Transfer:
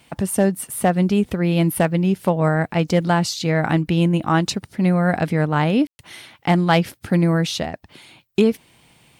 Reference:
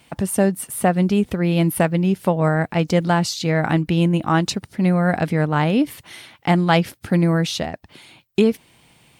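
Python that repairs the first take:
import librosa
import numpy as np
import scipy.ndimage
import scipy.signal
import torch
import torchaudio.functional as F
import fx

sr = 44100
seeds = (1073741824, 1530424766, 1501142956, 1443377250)

y = fx.fix_declip(x, sr, threshold_db=-6.0)
y = fx.fix_ambience(y, sr, seeds[0], print_start_s=7.87, print_end_s=8.37, start_s=5.87, end_s=5.99)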